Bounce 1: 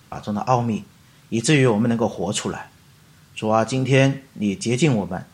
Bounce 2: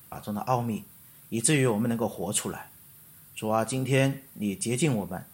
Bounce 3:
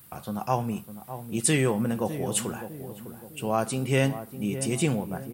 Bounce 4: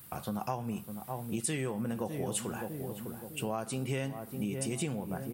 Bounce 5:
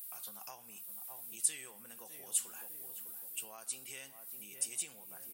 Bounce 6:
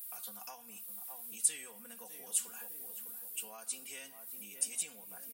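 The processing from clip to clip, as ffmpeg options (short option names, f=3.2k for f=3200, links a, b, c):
-af "aexciter=amount=11.9:drive=3.7:freq=9.1k,volume=-7.5dB"
-filter_complex "[0:a]asplit=2[a][b];[b]adelay=605,lowpass=f=830:p=1,volume=-10dB,asplit=2[c][d];[d]adelay=605,lowpass=f=830:p=1,volume=0.48,asplit=2[e][f];[f]adelay=605,lowpass=f=830:p=1,volume=0.48,asplit=2[g][h];[h]adelay=605,lowpass=f=830:p=1,volume=0.48,asplit=2[i][j];[j]adelay=605,lowpass=f=830:p=1,volume=0.48[k];[a][c][e][g][i][k]amix=inputs=6:normalize=0"
-af "acompressor=threshold=-31dB:ratio=6"
-af "aderivative,volume=2dB"
-af "aecho=1:1:4.2:0.78,volume=-1dB"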